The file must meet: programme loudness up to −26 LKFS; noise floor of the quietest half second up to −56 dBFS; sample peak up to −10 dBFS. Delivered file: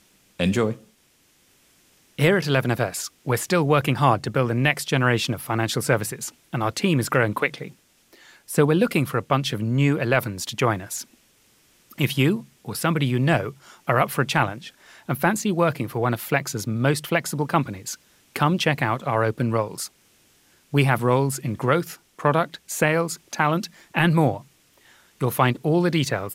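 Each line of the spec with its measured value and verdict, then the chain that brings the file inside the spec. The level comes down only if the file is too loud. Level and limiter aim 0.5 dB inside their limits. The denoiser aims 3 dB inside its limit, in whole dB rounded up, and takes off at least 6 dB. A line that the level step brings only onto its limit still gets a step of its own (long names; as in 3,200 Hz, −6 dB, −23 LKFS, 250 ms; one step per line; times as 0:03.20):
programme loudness −23.0 LKFS: out of spec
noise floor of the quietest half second −61 dBFS: in spec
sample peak −4.5 dBFS: out of spec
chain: level −3.5 dB
brickwall limiter −10.5 dBFS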